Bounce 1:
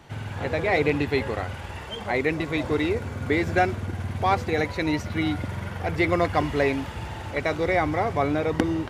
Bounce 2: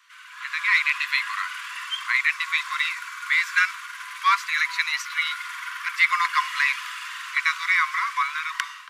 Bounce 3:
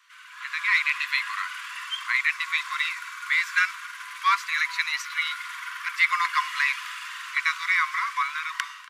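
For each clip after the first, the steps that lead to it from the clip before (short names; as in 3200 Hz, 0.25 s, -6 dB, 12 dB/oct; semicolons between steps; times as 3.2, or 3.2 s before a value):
Chebyshev high-pass 1000 Hz, order 10; AGC gain up to 11 dB; gain -2 dB
echo 0.245 s -23 dB; gain -2 dB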